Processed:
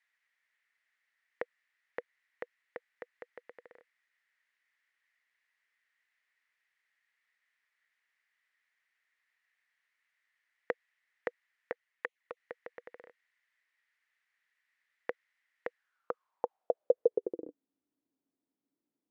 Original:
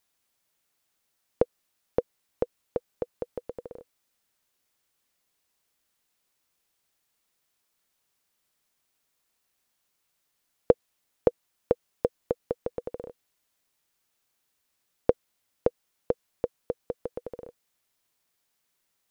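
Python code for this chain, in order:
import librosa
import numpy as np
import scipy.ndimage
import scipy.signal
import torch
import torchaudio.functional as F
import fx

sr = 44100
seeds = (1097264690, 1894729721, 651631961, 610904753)

y = fx.env_flanger(x, sr, rest_ms=9.6, full_db=-28.5, at=(11.72, 12.37))
y = fx.filter_sweep_bandpass(y, sr, from_hz=1900.0, to_hz=280.0, start_s=15.71, end_s=17.54, q=6.9)
y = F.gain(torch.from_numpy(y), 12.5).numpy()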